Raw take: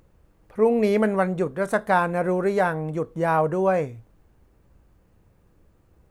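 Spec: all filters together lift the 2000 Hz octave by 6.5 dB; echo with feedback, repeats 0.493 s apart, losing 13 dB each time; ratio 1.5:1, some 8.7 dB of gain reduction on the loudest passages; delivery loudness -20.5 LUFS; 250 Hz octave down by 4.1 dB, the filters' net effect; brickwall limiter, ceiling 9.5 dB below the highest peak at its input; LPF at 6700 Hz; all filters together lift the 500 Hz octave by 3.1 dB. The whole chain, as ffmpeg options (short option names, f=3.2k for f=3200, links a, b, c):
-af "lowpass=6.7k,equalizer=f=250:t=o:g=-8.5,equalizer=f=500:t=o:g=5.5,equalizer=f=2k:t=o:g=9,acompressor=threshold=-37dB:ratio=1.5,alimiter=limit=-21.5dB:level=0:latency=1,aecho=1:1:493|986|1479:0.224|0.0493|0.0108,volume=11dB"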